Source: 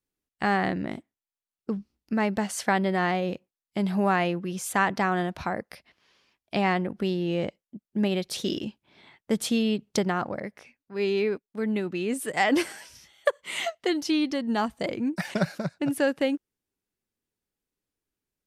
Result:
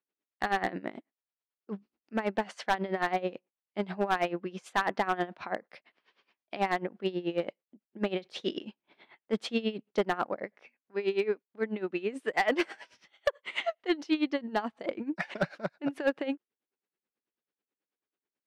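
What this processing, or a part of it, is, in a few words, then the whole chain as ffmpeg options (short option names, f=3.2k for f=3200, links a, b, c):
helicopter radio: -af "highpass=300,lowpass=3k,aeval=exprs='val(0)*pow(10,-18*(0.5-0.5*cos(2*PI*9.2*n/s))/20)':c=same,asoftclip=type=hard:threshold=-21.5dB,volume=3dB"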